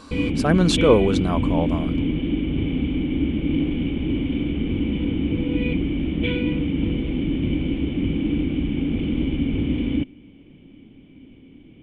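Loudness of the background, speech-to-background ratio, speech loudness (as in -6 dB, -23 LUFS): -24.0 LUFS, 3.5 dB, -20.5 LUFS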